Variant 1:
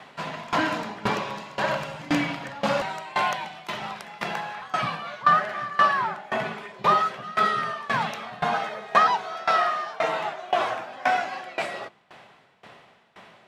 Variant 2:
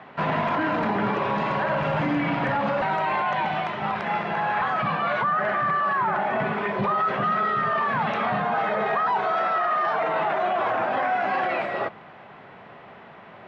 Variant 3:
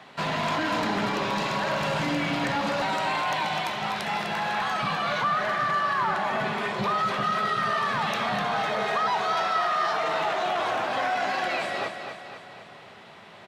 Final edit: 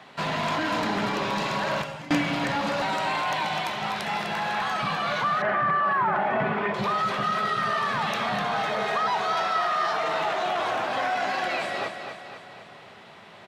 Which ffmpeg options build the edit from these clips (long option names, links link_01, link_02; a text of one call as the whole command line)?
ffmpeg -i take0.wav -i take1.wav -i take2.wav -filter_complex "[2:a]asplit=3[link_01][link_02][link_03];[link_01]atrim=end=1.822[link_04];[0:a]atrim=start=1.818:end=2.222[link_05];[link_02]atrim=start=2.218:end=5.422[link_06];[1:a]atrim=start=5.418:end=6.742[link_07];[link_03]atrim=start=6.738[link_08];[link_04][link_05]acrossfade=duration=0.004:curve1=hsin:curve2=hsin[link_09];[link_09][link_06]acrossfade=duration=0.004:curve1=hsin:curve2=hsin[link_10];[link_10][link_07]acrossfade=duration=0.004:curve1=hsin:curve2=hsin[link_11];[link_11][link_08]acrossfade=duration=0.004:curve1=hsin:curve2=hsin" out.wav